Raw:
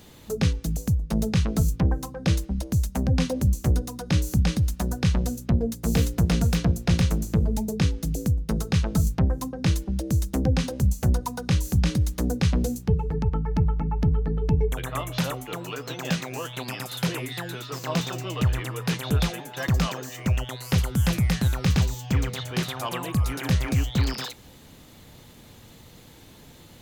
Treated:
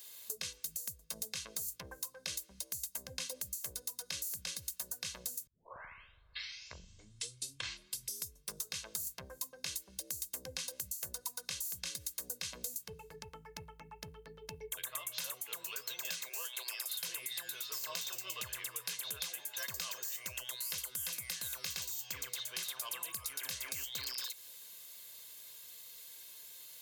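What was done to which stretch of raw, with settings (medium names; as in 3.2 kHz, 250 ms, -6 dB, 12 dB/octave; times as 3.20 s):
5.47 s: tape start 3.26 s
16.29–16.87 s: elliptic high-pass 350 Hz
whole clip: differentiator; comb 1.9 ms, depth 48%; compression, threshold -39 dBFS; trim +2.5 dB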